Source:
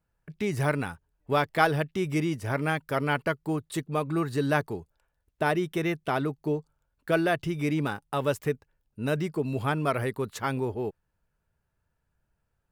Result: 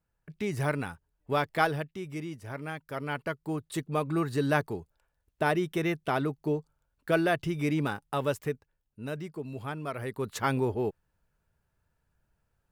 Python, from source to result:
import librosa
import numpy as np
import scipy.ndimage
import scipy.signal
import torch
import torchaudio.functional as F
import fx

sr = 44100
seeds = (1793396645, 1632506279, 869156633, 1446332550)

y = fx.gain(x, sr, db=fx.line((1.62, -3.0), (2.02, -10.0), (2.73, -10.0), (3.89, -1.0), (8.09, -1.0), (9.19, -9.0), (9.94, -9.0), (10.37, 1.5)))